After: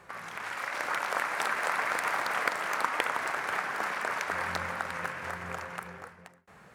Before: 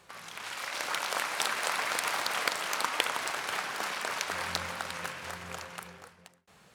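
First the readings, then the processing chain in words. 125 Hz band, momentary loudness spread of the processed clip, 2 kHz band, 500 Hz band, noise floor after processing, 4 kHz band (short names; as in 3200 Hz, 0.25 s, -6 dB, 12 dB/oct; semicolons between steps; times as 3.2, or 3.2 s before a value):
+2.5 dB, 9 LU, +2.5 dB, +2.0 dB, -55 dBFS, -7.5 dB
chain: resonant high shelf 2500 Hz -8 dB, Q 1.5; in parallel at -2 dB: compressor, threshold -42 dBFS, peak gain reduction 17.5 dB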